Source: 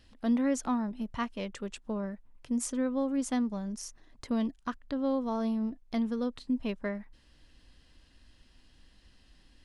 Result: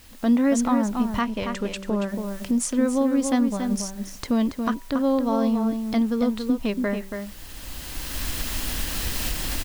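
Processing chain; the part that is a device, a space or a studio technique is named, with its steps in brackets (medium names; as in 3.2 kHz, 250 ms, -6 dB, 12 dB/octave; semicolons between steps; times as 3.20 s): de-hum 194 Hz, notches 5; cheap recorder with automatic gain (white noise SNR 28 dB; recorder AGC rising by 15 dB/s); 1.21–2.09 s: treble shelf 10 kHz -11 dB; echo from a far wall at 48 m, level -6 dB; trim +8 dB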